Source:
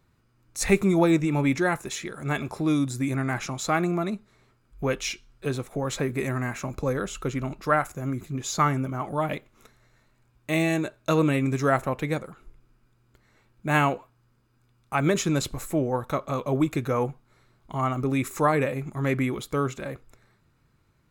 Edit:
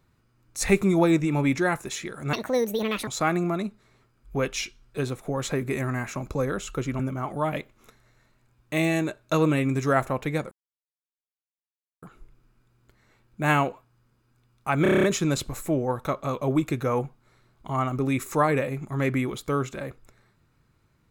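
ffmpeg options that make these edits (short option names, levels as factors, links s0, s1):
-filter_complex "[0:a]asplit=12[s0][s1][s2][s3][s4][s5][s6][s7][s8][s9][s10][s11];[s0]atrim=end=2.334[s12];[s1]atrim=start=2.33:end=3.55,asetpts=PTS-STARTPTS,asetrate=72324,aresample=44100,atrim=end_sample=32806,asetpts=PTS-STARTPTS[s13];[s2]atrim=start=3.546:end=7.472[s14];[s3]atrim=start=8.758:end=12.28,asetpts=PTS-STARTPTS,afade=t=out:st=3.518:d=0.004:c=hsin,apad=pad_dur=1.51[s15];[s4]atrim=start=12.28:end=15.112,asetpts=PTS-STARTPTS,afade=t=in:d=0.004:c=hsin[s16];[s5]atrim=start=15.078:end=15.112[s17];[s6]atrim=start=15.078:end=15.112[s18];[s7]atrim=start=15.078:end=15.112[s19];[s8]atrim=start=15.078:end=15.112[s20];[s9]atrim=start=15.078:end=15.112[s21];[s10]atrim=start=15.078:end=15.112[s22];[s11]atrim=start=15.078[s23];[s12][s13]acrossfade=d=0.004:c1=hsin:c2=hsin[s24];[s24][s14]acrossfade=d=0.004:c1=hsin:c2=hsin[s25];[s15][s16]concat=n=2:v=0:a=1[s26];[s25][s26]acrossfade=d=0.004:c1=hsin:c2=hsin[s27];[s27][s17]acrossfade=d=0.004:c1=hsin:c2=hsin[s28];[s28][s18]acrossfade=d=0.004:c1=hsin:c2=hsin[s29];[s29][s19]acrossfade=d=0.004:c1=hsin:c2=hsin[s30];[s30][s20]acrossfade=d=0.004:c1=hsin:c2=hsin[s31];[s31][s21]acrossfade=d=0.004:c1=hsin:c2=hsin[s32];[s32][s22]acrossfade=d=0.004:c1=hsin:c2=hsin[s33];[s33][s23]acrossfade=d=0.004:c1=hsin:c2=hsin"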